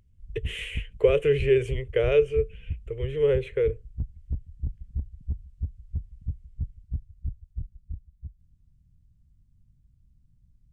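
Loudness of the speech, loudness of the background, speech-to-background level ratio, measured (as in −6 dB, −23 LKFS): −25.0 LKFS, −38.0 LKFS, 13.0 dB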